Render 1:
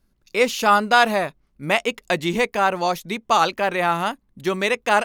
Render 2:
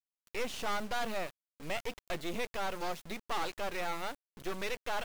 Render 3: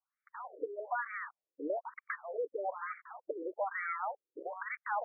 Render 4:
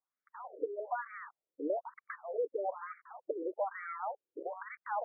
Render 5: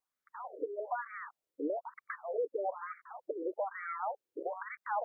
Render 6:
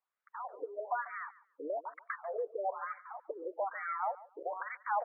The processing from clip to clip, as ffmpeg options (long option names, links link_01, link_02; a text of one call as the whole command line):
ffmpeg -i in.wav -filter_complex "[0:a]asoftclip=type=tanh:threshold=-18.5dB,acrossover=split=5500[link_01][link_02];[link_02]acompressor=threshold=-45dB:ratio=4:attack=1:release=60[link_03];[link_01][link_03]amix=inputs=2:normalize=0,acrusher=bits=4:dc=4:mix=0:aa=0.000001,volume=-7.5dB" out.wav
ffmpeg -i in.wav -af "acompressor=threshold=-41dB:ratio=4,afftfilt=real='re*between(b*sr/1024,370*pow(1700/370,0.5+0.5*sin(2*PI*1.1*pts/sr))/1.41,370*pow(1700/370,0.5+0.5*sin(2*PI*1.1*pts/sr))*1.41)':imag='im*between(b*sr/1024,370*pow(1700/370,0.5+0.5*sin(2*PI*1.1*pts/sr))/1.41,370*pow(1700/370,0.5+0.5*sin(2*PI*1.1*pts/sr))*1.41)':win_size=1024:overlap=0.75,volume=14dB" out.wav
ffmpeg -i in.wav -af "bandpass=frequency=380:width_type=q:width=0.59:csg=0,volume=2.5dB" out.wav
ffmpeg -i in.wav -af "alimiter=level_in=4.5dB:limit=-24dB:level=0:latency=1:release=272,volume=-4.5dB,volume=2.5dB" out.wav
ffmpeg -i in.wav -af "highpass=650,lowpass=2100,aecho=1:1:142|284:0.112|0.0202,volume=3.5dB" out.wav